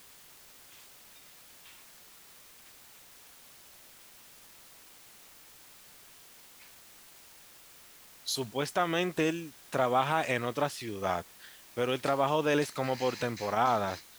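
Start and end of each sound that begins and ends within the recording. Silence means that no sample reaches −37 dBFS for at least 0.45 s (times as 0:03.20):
0:08.27–0:11.21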